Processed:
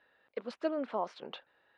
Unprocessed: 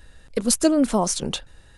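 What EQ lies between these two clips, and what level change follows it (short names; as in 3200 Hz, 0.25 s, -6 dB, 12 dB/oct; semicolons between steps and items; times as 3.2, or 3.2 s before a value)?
BPF 540–4600 Hz; air absorption 400 m; -7.5 dB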